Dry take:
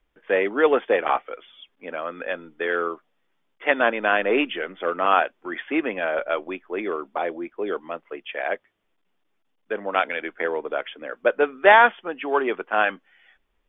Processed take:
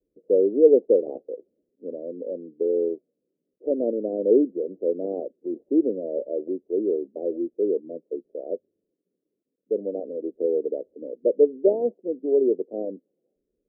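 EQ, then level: band-pass 410 Hz, Q 0.9; steep low-pass 530 Hz 48 dB/oct; +5.0 dB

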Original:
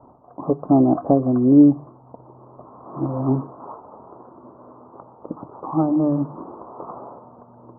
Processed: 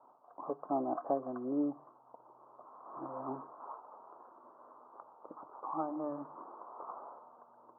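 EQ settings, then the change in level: HPF 1100 Hz 6 dB/oct; air absorption 300 m; tilt +3.5 dB/oct; -3.5 dB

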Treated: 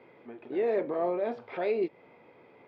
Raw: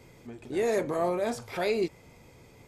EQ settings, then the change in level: dynamic EQ 1300 Hz, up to -7 dB, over -44 dBFS, Q 0.7; BPF 340–3200 Hz; air absorption 350 m; +3.5 dB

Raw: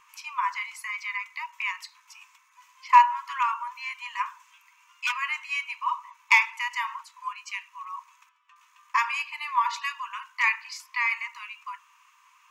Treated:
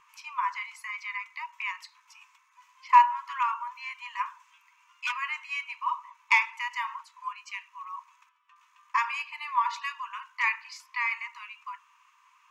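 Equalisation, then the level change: bell 2200 Hz -2.5 dB 2.7 oct; high shelf 6500 Hz -11 dB; 0.0 dB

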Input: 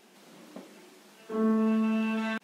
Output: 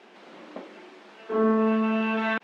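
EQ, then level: HPF 310 Hz 12 dB/oct; LPF 2900 Hz 12 dB/oct; +8.5 dB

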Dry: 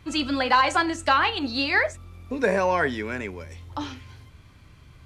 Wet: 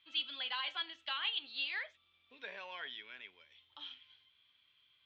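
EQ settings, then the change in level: band-pass 3300 Hz, Q 7.7; air absorption 230 m; +3.5 dB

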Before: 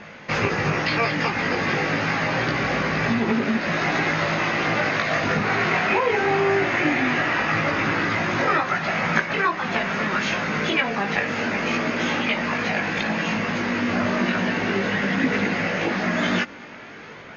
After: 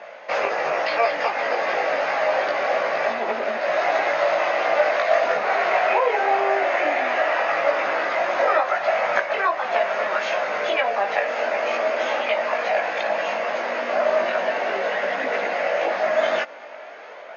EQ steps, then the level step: resonant high-pass 620 Hz, resonance Q 4.9; high shelf 5400 Hz -5.5 dB; -2.5 dB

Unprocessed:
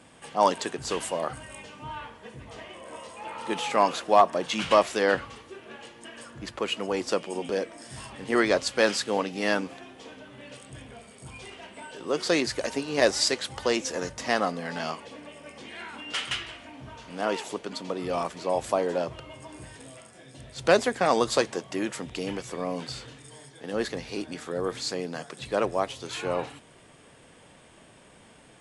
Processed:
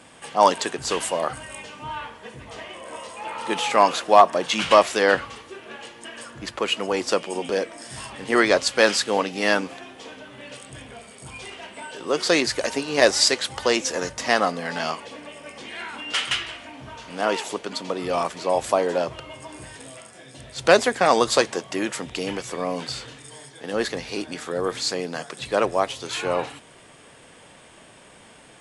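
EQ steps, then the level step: low shelf 400 Hz -5.5 dB; +6.5 dB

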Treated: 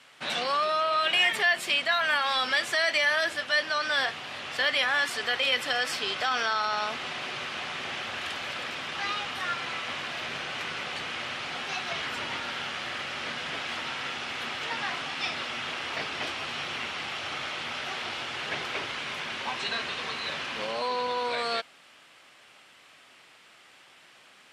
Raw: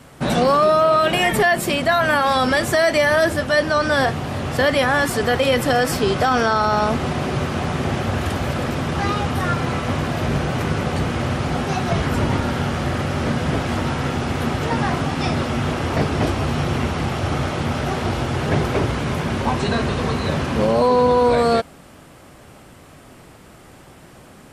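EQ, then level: band-pass 3000 Hz, Q 1.2; 0.0 dB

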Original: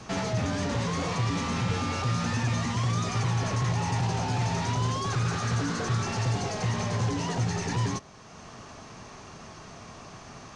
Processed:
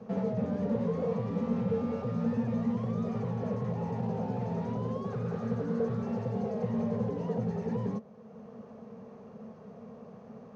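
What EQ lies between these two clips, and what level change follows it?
double band-pass 320 Hz, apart 1.1 oct; +8.5 dB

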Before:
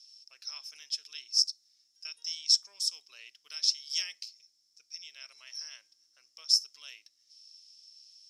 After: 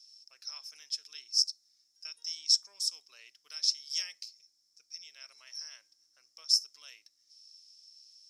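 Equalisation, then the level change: bell 3000 Hz -6.5 dB 0.85 oct; 0.0 dB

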